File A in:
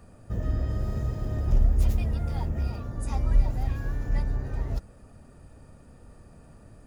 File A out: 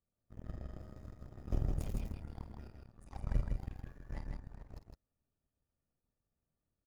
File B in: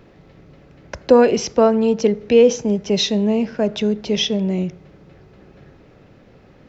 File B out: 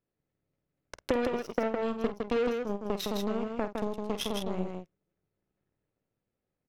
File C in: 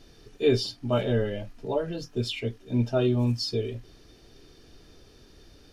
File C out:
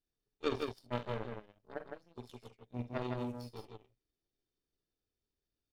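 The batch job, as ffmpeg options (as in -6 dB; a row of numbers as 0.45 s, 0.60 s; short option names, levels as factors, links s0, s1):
-af "aeval=exprs='0.891*(cos(1*acos(clip(val(0)/0.891,-1,1)))-cos(1*PI/2))+0.126*(cos(7*acos(clip(val(0)/0.891,-1,1)))-cos(7*PI/2))+0.01*(cos(8*acos(clip(val(0)/0.891,-1,1)))-cos(8*PI/2))':c=same,acompressor=threshold=0.0398:ratio=6,aecho=1:1:49.56|160.3:0.282|0.631"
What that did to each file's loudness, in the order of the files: -14.5 LU, -15.0 LU, -14.0 LU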